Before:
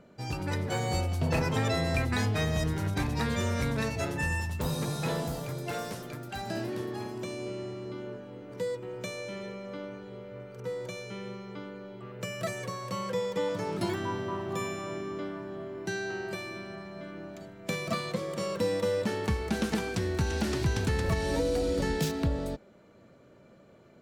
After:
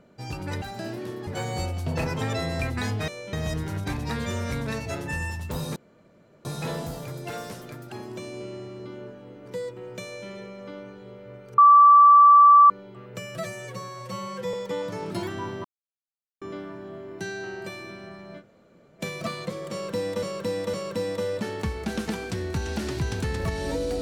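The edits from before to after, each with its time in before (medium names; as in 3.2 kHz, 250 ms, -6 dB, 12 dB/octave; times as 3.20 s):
4.86 s: insert room tone 0.69 s
6.33–6.98 s: move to 0.62 s
9.09–9.34 s: copy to 2.43 s
10.64–11.76 s: bleep 1.16 kHz -9.5 dBFS
12.41–13.20 s: stretch 1.5×
14.31–15.08 s: mute
17.07–17.66 s: room tone, crossfade 0.06 s
18.38–18.89 s: loop, 3 plays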